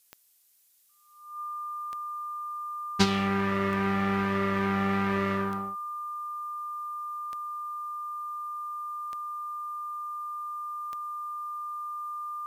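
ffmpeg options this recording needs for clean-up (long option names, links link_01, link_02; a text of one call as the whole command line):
ffmpeg -i in.wav -af "adeclick=threshold=4,bandreject=frequency=1200:width=30,agate=range=-21dB:threshold=-39dB" out.wav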